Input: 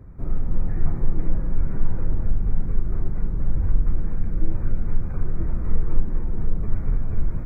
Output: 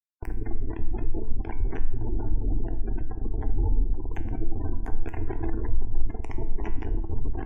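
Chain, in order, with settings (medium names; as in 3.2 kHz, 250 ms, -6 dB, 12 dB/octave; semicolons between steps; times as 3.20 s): spectral noise reduction 6 dB; chorus voices 2, 0.97 Hz, delay 22 ms, depth 3 ms; in parallel at -1 dB: peak limiter -18 dBFS, peak gain reduction 8.5 dB; on the sum: bit crusher 4-bit; spectral gate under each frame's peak -25 dB strong; static phaser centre 830 Hz, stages 8; feedback comb 110 Hz, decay 0.73 s, harmonics all, mix 70%; bucket-brigade echo 515 ms, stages 4096, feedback 35%, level -13 dB; trim +6 dB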